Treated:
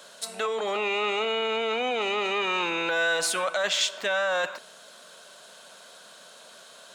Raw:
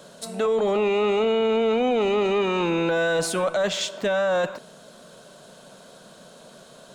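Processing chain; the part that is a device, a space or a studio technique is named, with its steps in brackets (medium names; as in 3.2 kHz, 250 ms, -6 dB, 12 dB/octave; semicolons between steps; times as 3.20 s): filter by subtraction (in parallel: low-pass 1.9 kHz 12 dB/octave + polarity flip); on the sum: trim +1.5 dB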